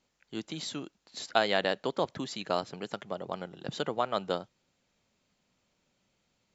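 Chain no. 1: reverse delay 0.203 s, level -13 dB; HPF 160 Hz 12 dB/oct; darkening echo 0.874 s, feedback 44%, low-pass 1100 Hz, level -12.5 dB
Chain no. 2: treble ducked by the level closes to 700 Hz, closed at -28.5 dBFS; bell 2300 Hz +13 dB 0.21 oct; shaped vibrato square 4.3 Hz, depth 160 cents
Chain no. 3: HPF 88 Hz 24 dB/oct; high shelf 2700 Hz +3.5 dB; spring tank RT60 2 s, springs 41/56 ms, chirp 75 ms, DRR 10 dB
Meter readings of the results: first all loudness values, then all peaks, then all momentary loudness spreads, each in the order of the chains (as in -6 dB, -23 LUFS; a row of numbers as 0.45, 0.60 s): -33.5, -36.0, -32.5 LUFS; -8.5, -13.5, -7.5 dBFS; 17, 10, 15 LU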